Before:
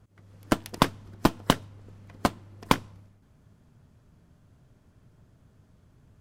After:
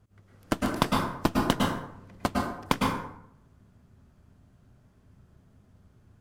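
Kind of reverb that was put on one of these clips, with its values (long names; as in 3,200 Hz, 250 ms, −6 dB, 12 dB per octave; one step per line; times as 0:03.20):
dense smooth reverb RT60 0.77 s, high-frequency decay 0.55×, pre-delay 95 ms, DRR −1.5 dB
level −4 dB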